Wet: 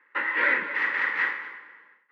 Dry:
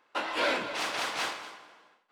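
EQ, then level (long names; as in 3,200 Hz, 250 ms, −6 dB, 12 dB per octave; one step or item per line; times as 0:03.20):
elliptic high-pass filter 160 Hz
Butterworth band-reject 690 Hz, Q 2.9
low-pass with resonance 1,900 Hz, resonance Q 13
−2.0 dB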